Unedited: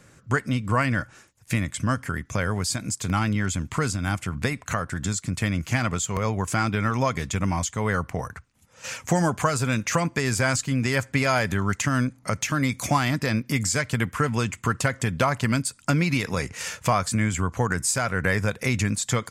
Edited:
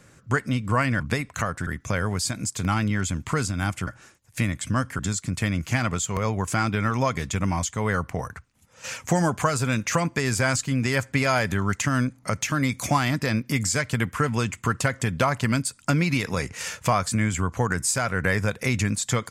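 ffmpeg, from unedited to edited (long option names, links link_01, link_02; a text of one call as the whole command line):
ffmpeg -i in.wav -filter_complex "[0:a]asplit=5[link_01][link_02][link_03][link_04][link_05];[link_01]atrim=end=1.002[link_06];[link_02]atrim=start=4.318:end=4.992[link_07];[link_03]atrim=start=2.118:end=4.322[link_08];[link_04]atrim=start=0.998:end=2.122[link_09];[link_05]atrim=start=4.988[link_10];[link_06][link_07]acrossfade=duration=0.004:curve1=hsin:curve2=hsin[link_11];[link_11][link_08]acrossfade=duration=0.004:curve1=hsin:curve2=hsin[link_12];[link_12][link_09]acrossfade=duration=0.004:curve1=hsin:curve2=hsin[link_13];[link_13][link_10]acrossfade=duration=0.004:curve1=hsin:curve2=hsin" out.wav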